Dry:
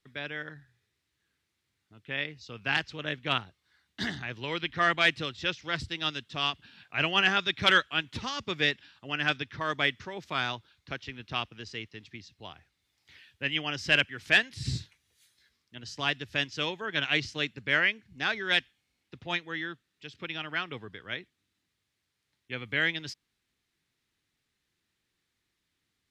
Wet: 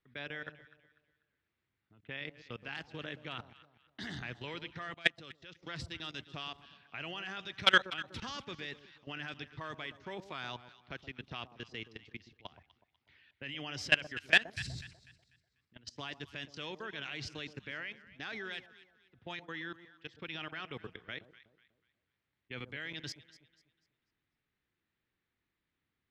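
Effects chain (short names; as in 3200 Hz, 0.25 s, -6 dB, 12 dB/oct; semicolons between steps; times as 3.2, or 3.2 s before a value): level quantiser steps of 21 dB; low-pass opened by the level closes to 2400 Hz, open at -40 dBFS; echo with dull and thin repeats by turns 0.123 s, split 970 Hz, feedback 56%, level -12 dB; 4.94–5.63 upward expander 1.5:1, over -55 dBFS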